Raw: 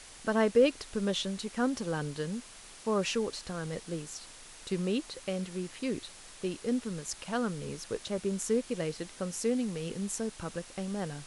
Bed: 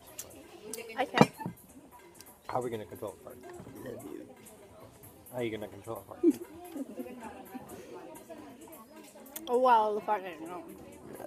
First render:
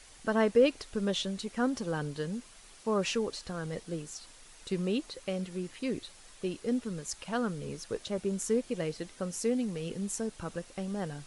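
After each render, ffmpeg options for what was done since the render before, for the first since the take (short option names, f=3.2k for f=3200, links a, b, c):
-af "afftdn=nr=6:nf=-51"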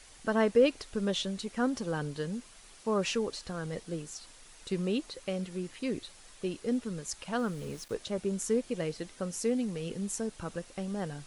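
-filter_complex "[0:a]asettb=1/sr,asplit=3[a][b][c];[a]atrim=end=7.394[d];[b]atrim=start=7.39:end=7.94,asetpts=PTS-STARTPTS,afade=t=in:d=0.004:c=qsin,afade=t=out:st=0.546:d=0.004:c=qsin,aeval=exprs='val(0)*gte(abs(val(0)),0.00398)':c=same[e];[c]atrim=start=7.936[f];[d][e]acrossfade=d=0.004:c1=hsin:c2=qsin[g];[g][f]acrossfade=d=0.004:c1=qsin:c2=hsin"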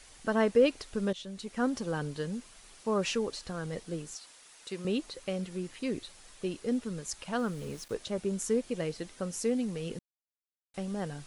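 -filter_complex "[0:a]asettb=1/sr,asplit=3[a][b][c];[a]atrim=end=4.154[d];[b]atrim=start=4.15:end=4.85,asetpts=PTS-STARTPTS,afade=t=in:d=0.004:c=qsin,afade=t=out:st=0.696:d=0.004:c=qsin,highpass=f=540:p=1[e];[c]atrim=start=4.846[f];[d][e]acrossfade=d=0.004:c1=hsin:c2=qsin[g];[g][f]acrossfade=d=0.004:c1=qsin:c2=hsin,asplit=4[h][i][j][k];[h]atrim=end=1.13,asetpts=PTS-STARTPTS,afade=t=out:st=1.126:d=0.004:c=hsin:silence=0.177828[l];[i]atrim=start=1.13:end=9.99,asetpts=PTS-STARTPTS,afade=t=in:d=0.5:silence=0.177828,afade=t=out:st=8.856:d=0.004:c=hsin[m];[j]atrim=start=9.99:end=10.74,asetpts=PTS-STARTPTS,volume=0[n];[k]atrim=start=10.74,asetpts=PTS-STARTPTS,afade=t=in:d=0.004:c=hsin[o];[l][m][n][o]concat=n=4:v=0:a=1"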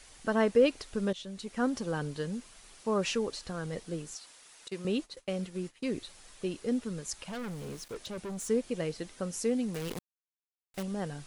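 -filter_complex "[0:a]asettb=1/sr,asplit=3[a][b][c];[a]atrim=end=4.684[d];[b]atrim=start=4.68:end=5.98,asetpts=PTS-STARTPTS,afade=t=in:d=0.004:c=qsin,afade=t=out:st=1.296:d=0.004:c=qsin,agate=range=-33dB:threshold=-41dB:ratio=3:release=100:detection=peak[e];[c]atrim=start=5.976[f];[d][e]acrossfade=d=0.004:c1=hsin:c2=qsin[g];[g][f]acrossfade=d=0.004:c1=qsin:c2=hsin,asettb=1/sr,asplit=3[h][i][j];[h]atrim=end=7.274[k];[i]atrim=start=7.27:end=8.49,asetpts=PTS-STARTPTS,afade=t=in:d=0.004:c=qsin,afade=t=out:st=1.216:d=0.004:c=qsin,asoftclip=type=hard:threshold=-36dB[l];[j]atrim=start=8.486[m];[k][l]acrossfade=d=0.004:c1=hsin:c2=qsin[n];[n][m]acrossfade=d=0.004:c1=qsin:c2=hsin,asettb=1/sr,asplit=3[o][p][q];[o]atrim=end=9.744[r];[p]atrim=start=9.74:end=10.83,asetpts=PTS-STARTPTS,afade=t=in:d=0.004:c=qsin,afade=t=out:st=1.086:d=0.004:c=qsin,acrusher=bits=7:dc=4:mix=0:aa=0.000001[s];[q]atrim=start=10.826[t];[r][s]acrossfade=d=0.004:c1=hsin:c2=qsin[u];[u][t]acrossfade=d=0.004:c1=qsin:c2=hsin"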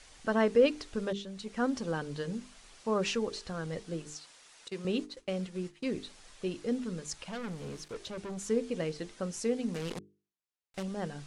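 -af "lowpass=7.8k,bandreject=f=50:t=h:w=6,bandreject=f=100:t=h:w=6,bandreject=f=150:t=h:w=6,bandreject=f=200:t=h:w=6,bandreject=f=250:t=h:w=6,bandreject=f=300:t=h:w=6,bandreject=f=350:t=h:w=6,bandreject=f=400:t=h:w=6,bandreject=f=450:t=h:w=6"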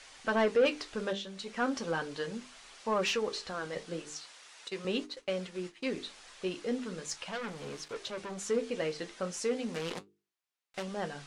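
-filter_complex "[0:a]flanger=delay=7.2:depth=9.2:regen=-59:speed=0.38:shape=sinusoidal,asplit=2[a][b];[b]highpass=f=720:p=1,volume=15dB,asoftclip=type=tanh:threshold=-17.5dB[c];[a][c]amix=inputs=2:normalize=0,lowpass=f=4.8k:p=1,volume=-6dB"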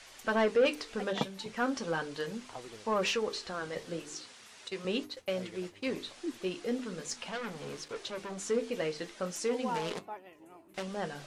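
-filter_complex "[1:a]volume=-12.5dB[a];[0:a][a]amix=inputs=2:normalize=0"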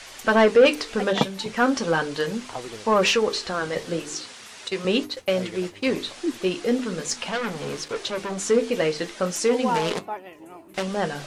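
-af "volume=11dB"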